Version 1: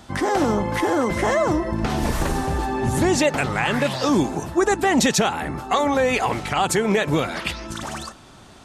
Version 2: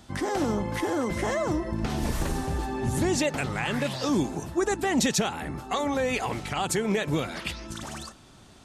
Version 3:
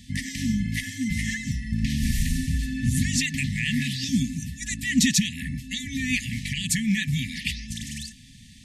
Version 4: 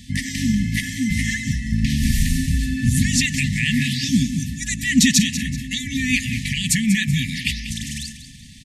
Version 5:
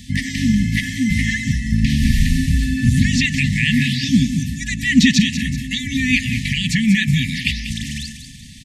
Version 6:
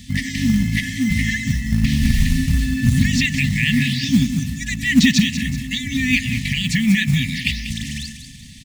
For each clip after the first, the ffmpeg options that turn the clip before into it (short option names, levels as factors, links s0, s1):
-af "equalizer=f=1000:t=o:w=2.6:g=-4.5,volume=0.596"
-af "afftfilt=real='re*(1-between(b*sr/4096,270,1700))':imag='im*(1-between(b*sr/4096,270,1700))':win_size=4096:overlap=0.75,volume=1.78"
-af "aecho=1:1:190|380|570|760:0.251|0.0904|0.0326|0.0117,volume=1.88"
-filter_complex "[0:a]acrossover=split=4900[s0][s1];[s1]acompressor=threshold=0.01:ratio=4:attack=1:release=60[s2];[s0][s2]amix=inputs=2:normalize=0,volume=1.5"
-af "acrusher=bits=6:mode=log:mix=0:aa=0.000001,volume=0.891"